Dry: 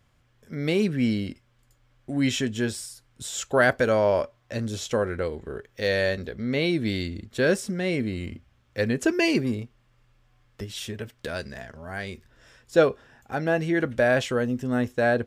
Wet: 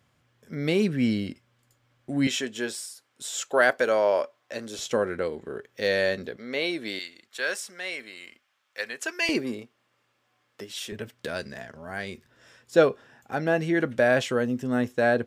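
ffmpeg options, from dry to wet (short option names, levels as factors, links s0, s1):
-af "asetnsamples=n=441:p=0,asendcmd='2.27 highpass f 370;4.79 highpass f 170;6.36 highpass f 450;6.99 highpass f 960;9.29 highpass f 300;10.92 highpass f 130',highpass=110"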